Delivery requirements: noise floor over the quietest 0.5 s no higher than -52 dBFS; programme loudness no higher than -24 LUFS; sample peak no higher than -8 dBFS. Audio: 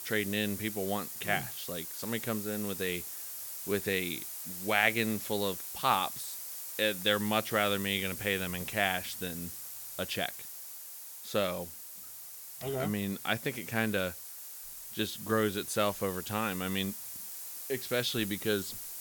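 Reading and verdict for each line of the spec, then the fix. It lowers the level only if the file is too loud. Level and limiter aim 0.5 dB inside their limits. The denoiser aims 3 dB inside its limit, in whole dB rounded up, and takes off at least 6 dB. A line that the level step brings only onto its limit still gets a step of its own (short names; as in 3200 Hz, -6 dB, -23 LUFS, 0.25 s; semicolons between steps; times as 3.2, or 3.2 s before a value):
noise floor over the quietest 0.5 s -46 dBFS: fail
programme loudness -33.0 LUFS: OK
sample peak -9.5 dBFS: OK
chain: denoiser 9 dB, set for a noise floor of -46 dBFS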